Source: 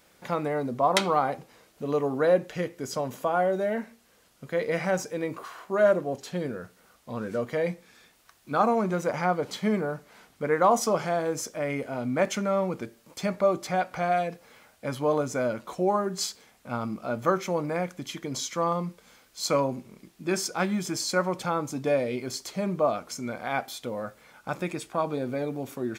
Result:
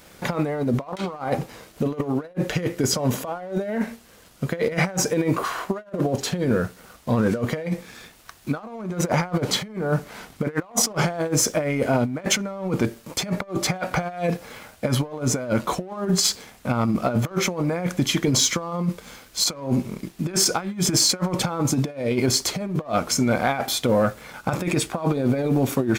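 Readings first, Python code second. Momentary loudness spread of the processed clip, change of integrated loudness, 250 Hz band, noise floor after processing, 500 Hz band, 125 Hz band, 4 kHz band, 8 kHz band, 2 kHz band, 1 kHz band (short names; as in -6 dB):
10 LU, +4.5 dB, +7.5 dB, -50 dBFS, +0.5 dB, +10.5 dB, +11.0 dB, +12.5 dB, +4.0 dB, -1.0 dB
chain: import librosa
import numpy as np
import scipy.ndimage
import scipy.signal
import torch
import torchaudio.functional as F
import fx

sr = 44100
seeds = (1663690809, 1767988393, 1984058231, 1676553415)

y = fx.low_shelf(x, sr, hz=190.0, db=6.5)
y = fx.over_compress(y, sr, threshold_db=-31.0, ratio=-0.5)
y = fx.leveller(y, sr, passes=1)
y = y * librosa.db_to_amplitude(5.0)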